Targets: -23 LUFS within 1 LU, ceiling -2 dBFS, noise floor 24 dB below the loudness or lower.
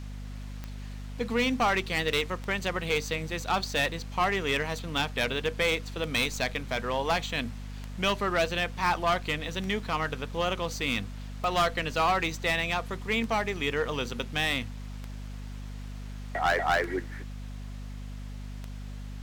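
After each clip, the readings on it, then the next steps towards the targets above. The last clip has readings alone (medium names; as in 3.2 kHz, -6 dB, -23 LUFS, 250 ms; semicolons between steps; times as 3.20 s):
clicks found 11; hum 50 Hz; highest harmonic 250 Hz; hum level -36 dBFS; loudness -28.5 LUFS; peak level -16.5 dBFS; loudness target -23.0 LUFS
-> de-click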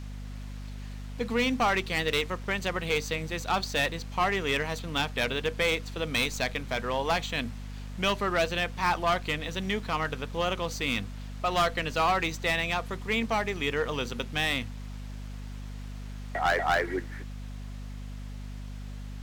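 clicks found 0; hum 50 Hz; highest harmonic 250 Hz; hum level -36 dBFS
-> hum notches 50/100/150/200/250 Hz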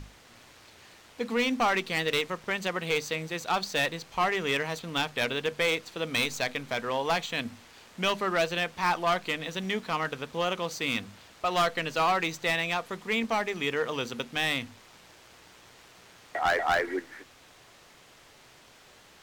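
hum not found; loudness -29.0 LUFS; peak level -15.0 dBFS; loudness target -23.0 LUFS
-> trim +6 dB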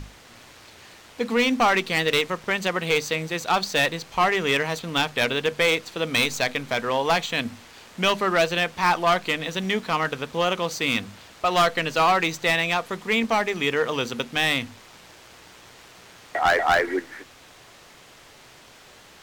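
loudness -23.0 LUFS; peak level -9.0 dBFS; noise floor -50 dBFS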